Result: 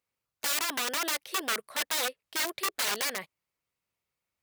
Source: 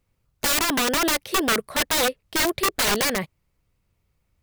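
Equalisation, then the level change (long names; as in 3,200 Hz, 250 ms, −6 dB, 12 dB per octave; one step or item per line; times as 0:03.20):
high-pass filter 850 Hz 6 dB per octave
−7.0 dB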